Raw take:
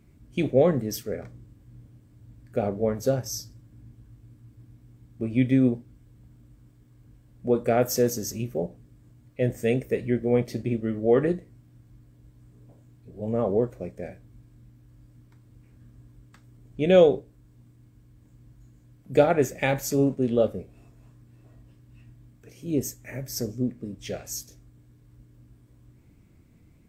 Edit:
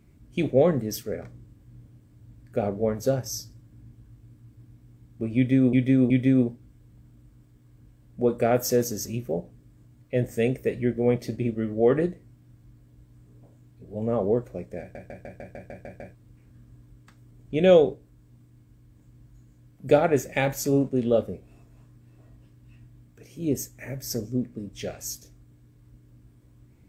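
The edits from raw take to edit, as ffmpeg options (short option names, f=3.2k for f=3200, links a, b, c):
-filter_complex "[0:a]asplit=12[a][b][c][d][e][f][g][h][i][j][k][l];[a]atrim=end=5.732[m];[b]atrim=start=5.358:end=5.732[n];[c]atrim=start=5.358:end=14.212[o];[d]atrim=start=14.058:end=14.212[p];[e]atrim=start=14.058:end=14.212[q];[f]atrim=start=14.058:end=14.212[r];[g]atrim=start=14.058:end=14.212[s];[h]atrim=start=14.058:end=14.212[t];[i]atrim=start=14.058:end=14.212[u];[j]atrim=start=14.058:end=14.212[v];[k]atrim=start=14.058:end=14.212[w];[l]atrim=start=15.408[x];[m][n]acrossfade=d=0.004:c1=hsin:c2=hsin[y];[y][o]acrossfade=d=0.004:c1=hsin:c2=hsin[z];[z][p]acrossfade=d=0.004:c1=hsin:c2=hsin[aa];[aa][q]acrossfade=d=0.004:c1=hsin:c2=hsin[ab];[ab][r]acrossfade=d=0.004:c1=hsin:c2=hsin[ac];[ac][s]acrossfade=d=0.004:c1=hsin:c2=hsin[ad];[ad][t]acrossfade=d=0.004:c1=hsin:c2=hsin[ae];[ae][u]acrossfade=d=0.004:c1=hsin:c2=hsin[af];[af][v]acrossfade=d=0.004:c1=hsin:c2=hsin[ag];[ag][w]acrossfade=d=0.004:c1=hsin:c2=hsin[ah];[ah][x]acrossfade=d=0.004:c1=hsin:c2=hsin"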